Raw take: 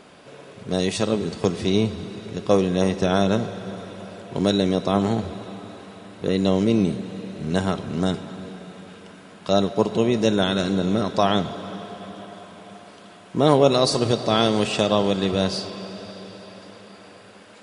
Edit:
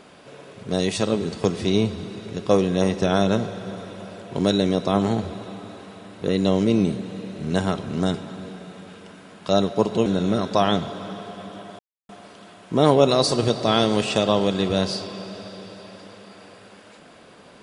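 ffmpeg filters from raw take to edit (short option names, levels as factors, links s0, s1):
-filter_complex "[0:a]asplit=4[s0][s1][s2][s3];[s0]atrim=end=10.062[s4];[s1]atrim=start=10.688:end=12.42,asetpts=PTS-STARTPTS,afade=t=out:st=1.728:d=0.004:c=hsin[s5];[s2]atrim=start=12.42:end=12.72,asetpts=PTS-STARTPTS,volume=0[s6];[s3]atrim=start=12.72,asetpts=PTS-STARTPTS,afade=t=in:d=0.004:c=hsin[s7];[s5][s6][s7]concat=n=3:v=0:a=1[s8];[s4][s8]acrossfade=d=0.004:c1=hsin:c2=hsin"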